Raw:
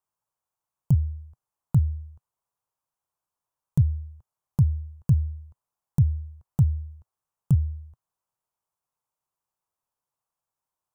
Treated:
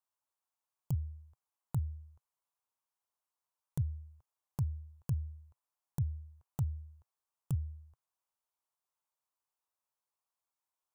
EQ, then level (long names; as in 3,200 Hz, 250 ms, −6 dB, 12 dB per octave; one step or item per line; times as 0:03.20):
parametric band 180 Hz −5.5 dB
low-shelf EQ 340 Hz −9 dB
−4.0 dB